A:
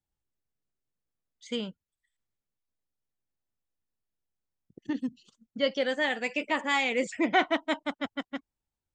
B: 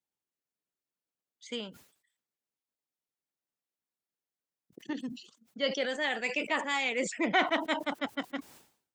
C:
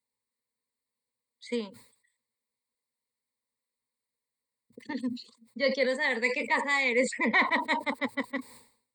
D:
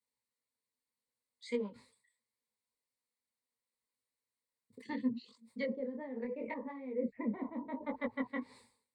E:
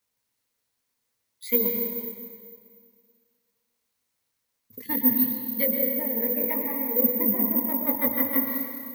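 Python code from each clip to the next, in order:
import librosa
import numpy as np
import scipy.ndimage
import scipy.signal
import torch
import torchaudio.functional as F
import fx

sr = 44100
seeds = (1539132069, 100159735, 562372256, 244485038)

y1 = scipy.signal.sosfilt(scipy.signal.butter(2, 210.0, 'highpass', fs=sr, output='sos'), x)
y1 = fx.hpss(y1, sr, part='harmonic', gain_db=-5)
y1 = fx.sustainer(y1, sr, db_per_s=110.0)
y2 = fx.ripple_eq(y1, sr, per_octave=0.96, db=16)
y3 = fx.env_lowpass_down(y2, sr, base_hz=340.0, full_db=-24.5)
y3 = fx.detune_double(y3, sr, cents=26)
y4 = fx.peak_eq(y3, sr, hz=97.0, db=8.0, octaves=0.62)
y4 = fx.rev_plate(y4, sr, seeds[0], rt60_s=2.0, hf_ratio=0.85, predelay_ms=105, drr_db=2.5)
y4 = (np.kron(y4[::3], np.eye(3)[0]) * 3)[:len(y4)]
y4 = y4 * 10.0 ** (7.5 / 20.0)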